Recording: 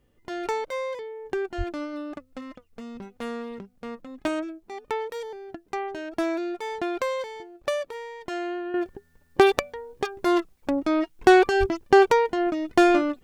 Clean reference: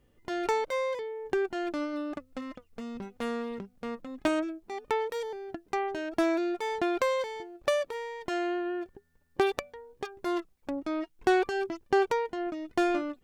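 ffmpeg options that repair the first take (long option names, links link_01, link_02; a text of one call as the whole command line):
ffmpeg -i in.wav -filter_complex "[0:a]asplit=3[link_01][link_02][link_03];[link_01]afade=type=out:start_time=1.57:duration=0.02[link_04];[link_02]highpass=frequency=140:width=0.5412,highpass=frequency=140:width=1.3066,afade=type=in:start_time=1.57:duration=0.02,afade=type=out:start_time=1.69:duration=0.02[link_05];[link_03]afade=type=in:start_time=1.69:duration=0.02[link_06];[link_04][link_05][link_06]amix=inputs=3:normalize=0,asplit=3[link_07][link_08][link_09];[link_07]afade=type=out:start_time=11.59:duration=0.02[link_10];[link_08]highpass=frequency=140:width=0.5412,highpass=frequency=140:width=1.3066,afade=type=in:start_time=11.59:duration=0.02,afade=type=out:start_time=11.71:duration=0.02[link_11];[link_09]afade=type=in:start_time=11.71:duration=0.02[link_12];[link_10][link_11][link_12]amix=inputs=3:normalize=0,asetnsamples=nb_out_samples=441:pad=0,asendcmd='8.74 volume volume -9dB',volume=0dB" out.wav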